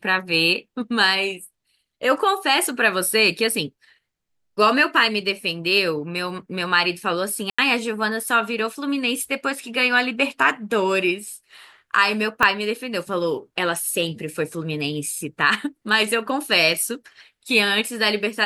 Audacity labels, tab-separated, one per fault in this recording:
7.500000	7.580000	drop-out 85 ms
12.430000	12.430000	click −4 dBFS

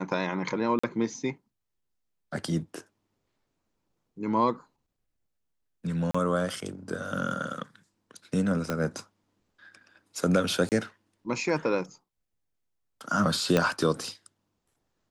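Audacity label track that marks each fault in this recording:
0.790000	0.830000	drop-out 45 ms
6.110000	6.140000	drop-out 35 ms
8.700000	8.700000	click −15 dBFS
10.690000	10.720000	drop-out 28 ms
13.570000	13.570000	click −9 dBFS

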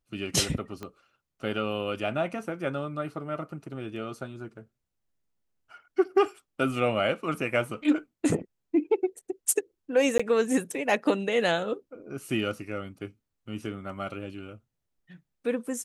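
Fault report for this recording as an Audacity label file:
0.830000	0.830000	click −23 dBFS
10.180000	10.200000	drop-out 15 ms

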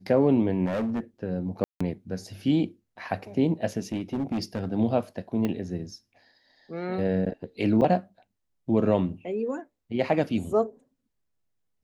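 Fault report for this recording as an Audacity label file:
0.650000	1.000000	clipping −24.5 dBFS
1.640000	1.800000	drop-out 165 ms
3.920000	4.680000	clipping −24 dBFS
5.450000	5.450000	click −16 dBFS
7.810000	7.820000	drop-out 6.2 ms

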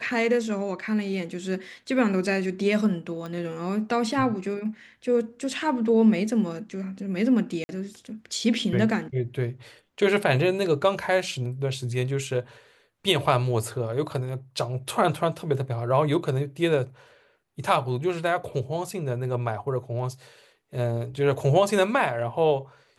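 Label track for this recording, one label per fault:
3.260000	3.260000	click −24 dBFS
7.640000	7.690000	drop-out 50 ms

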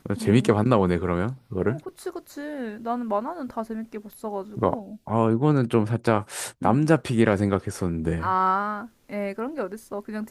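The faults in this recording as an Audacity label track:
4.130000	4.130000	click −31 dBFS

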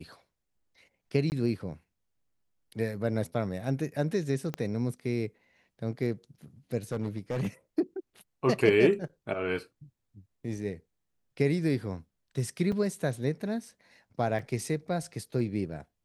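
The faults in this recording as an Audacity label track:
1.300000	1.320000	drop-out 19 ms
4.540000	4.540000	click −19 dBFS
6.920000	7.470000	clipping −26.5 dBFS
12.720000	12.720000	drop-out 4.3 ms
14.390000	14.390000	drop-out 3.5 ms

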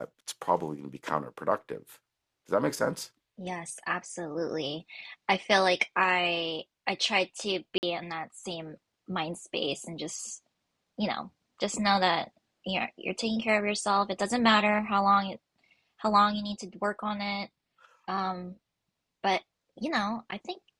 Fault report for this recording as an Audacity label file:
7.780000	7.830000	drop-out 49 ms

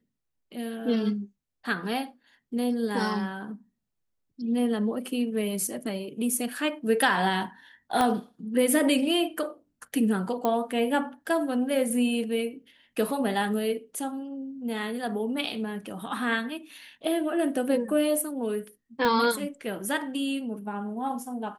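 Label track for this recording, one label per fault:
8.010000	8.010000	click −12 dBFS
10.450000	10.450000	click −14 dBFS
19.050000	19.050000	click −13 dBFS

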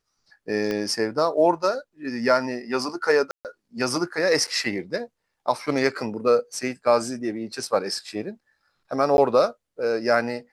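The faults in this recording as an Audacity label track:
0.710000	0.710000	click −15 dBFS
3.310000	3.450000	drop-out 138 ms
4.470000	4.480000	drop-out 6.3 ms
9.170000	9.180000	drop-out 11 ms

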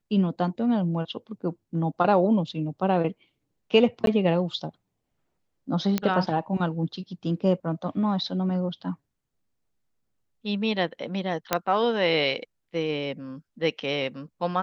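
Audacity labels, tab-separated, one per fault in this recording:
4.060000	4.070000	drop-out 12 ms
5.980000	5.980000	click −10 dBFS
11.530000	11.530000	click −5 dBFS

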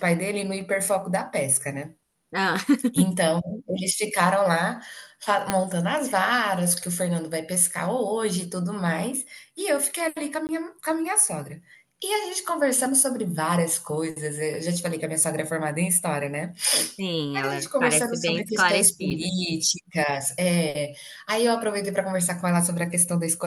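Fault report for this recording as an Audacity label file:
5.500000	5.500000	click −6 dBFS
10.470000	10.490000	drop-out 19 ms
19.100000	19.110000	drop-out 7.8 ms

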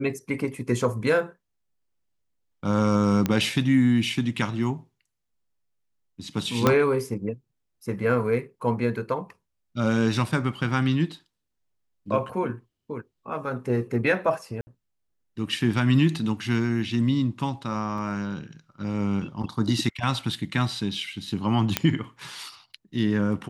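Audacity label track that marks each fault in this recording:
3.260000	3.260000	click −10 dBFS
6.670000	6.670000	click −5 dBFS
14.610000	14.670000	drop-out 60 ms
17.980000	17.980000	drop-out 3 ms
21.770000	21.770000	click −4 dBFS

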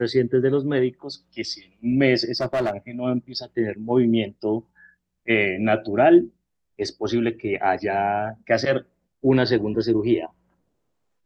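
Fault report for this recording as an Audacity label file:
2.360000	2.710000	clipping −19 dBFS

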